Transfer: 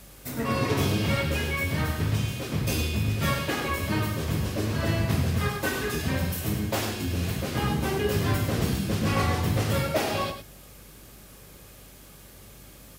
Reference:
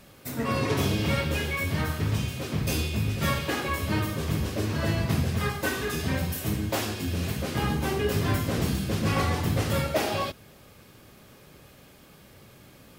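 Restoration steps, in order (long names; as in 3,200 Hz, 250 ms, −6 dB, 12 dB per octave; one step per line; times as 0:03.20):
hum removal 49.2 Hz, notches 4
broadband denoise 6 dB, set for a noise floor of −48 dBFS
echo removal 103 ms −9 dB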